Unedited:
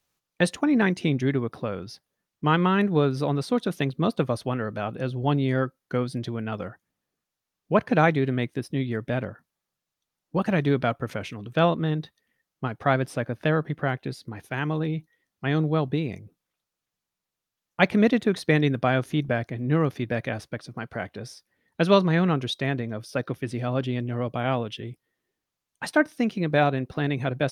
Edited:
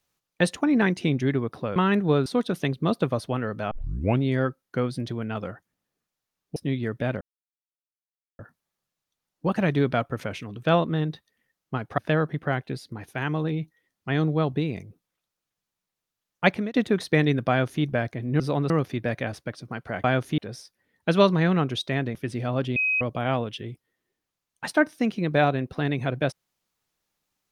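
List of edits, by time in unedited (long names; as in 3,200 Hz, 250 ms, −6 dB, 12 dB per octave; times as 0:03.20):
0:01.76–0:02.63: remove
0:03.13–0:03.43: move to 0:19.76
0:04.88: tape start 0.51 s
0:07.73–0:08.64: remove
0:09.29: splice in silence 1.18 s
0:12.88–0:13.34: remove
0:17.82–0:18.10: fade out
0:18.85–0:19.19: duplicate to 0:21.10
0:22.87–0:23.34: remove
0:23.95–0:24.20: beep over 2,530 Hz −20.5 dBFS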